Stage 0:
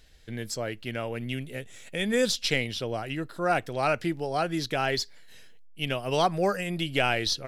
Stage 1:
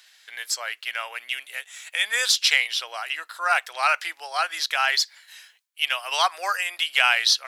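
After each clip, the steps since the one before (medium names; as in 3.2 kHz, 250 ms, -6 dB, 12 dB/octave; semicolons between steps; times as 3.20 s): high-pass 970 Hz 24 dB/octave; trim +9 dB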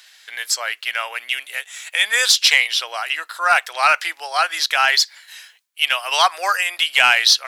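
saturation -7 dBFS, distortion -22 dB; trim +6.5 dB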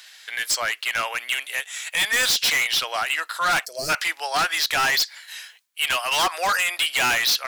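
overload inside the chain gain 20 dB; time-frequency box 3.65–3.90 s, 690–4100 Hz -24 dB; trim +2 dB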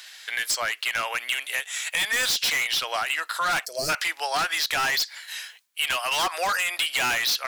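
compression, threshold -25 dBFS, peak gain reduction 6 dB; trim +2 dB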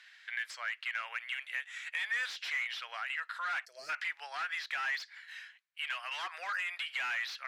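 band-pass filter 1.8 kHz, Q 1.8; trim -7.5 dB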